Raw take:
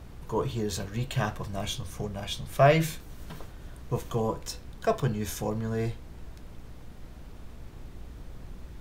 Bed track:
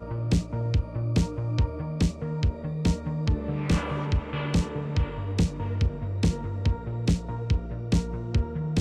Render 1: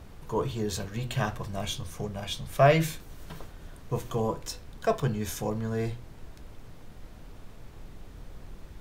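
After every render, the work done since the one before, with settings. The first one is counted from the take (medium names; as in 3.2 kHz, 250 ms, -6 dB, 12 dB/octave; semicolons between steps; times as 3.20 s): de-hum 60 Hz, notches 6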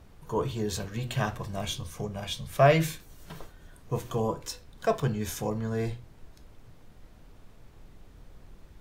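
noise print and reduce 6 dB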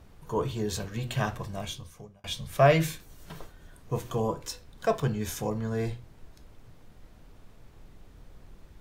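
1.40–2.24 s: fade out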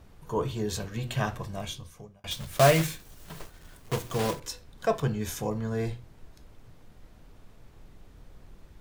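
2.31–4.40 s: block-companded coder 3-bit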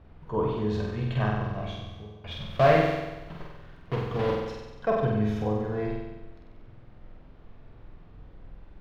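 distance through air 330 m; flutter echo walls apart 8.1 m, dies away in 1.1 s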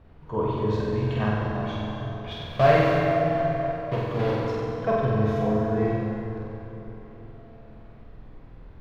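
on a send: filtered feedback delay 239 ms, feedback 57%, low-pass 2 kHz, level -8 dB; on the sum: plate-style reverb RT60 4.3 s, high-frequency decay 0.6×, DRR 1 dB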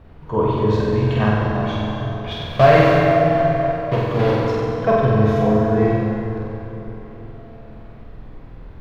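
trim +7.5 dB; peak limiter -1 dBFS, peak gain reduction 3 dB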